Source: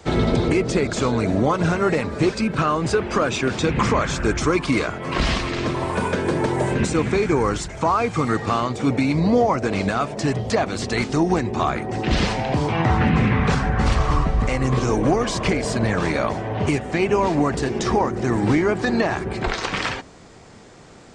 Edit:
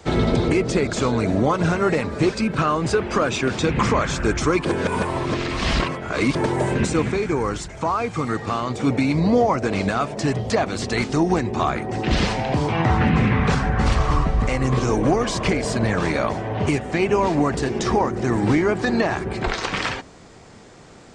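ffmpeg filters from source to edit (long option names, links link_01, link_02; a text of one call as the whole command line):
ffmpeg -i in.wav -filter_complex "[0:a]asplit=5[link_01][link_02][link_03][link_04][link_05];[link_01]atrim=end=4.652[link_06];[link_02]atrim=start=4.648:end=6.352,asetpts=PTS-STARTPTS,areverse[link_07];[link_03]atrim=start=6.348:end=7.112[link_08];[link_04]atrim=start=7.108:end=8.672,asetpts=PTS-STARTPTS,volume=-3dB[link_09];[link_05]atrim=start=8.668[link_10];[link_06][link_07]acrossfade=duration=0.004:curve1=hsin:curve2=hsin[link_11];[link_11][link_08]acrossfade=duration=0.004:curve1=hsin:curve2=hsin[link_12];[link_12][link_09]acrossfade=duration=0.004:curve1=hsin:curve2=hsin[link_13];[link_13][link_10]acrossfade=duration=0.004:curve1=hsin:curve2=hsin" out.wav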